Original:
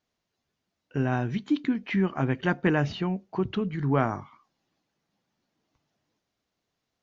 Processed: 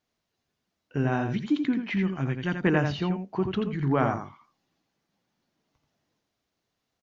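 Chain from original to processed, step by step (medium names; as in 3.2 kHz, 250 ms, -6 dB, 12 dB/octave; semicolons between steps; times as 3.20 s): 1.94–2.63 s: peaking EQ 730 Hz -9.5 dB 2.2 oct; on a send: delay 84 ms -6.5 dB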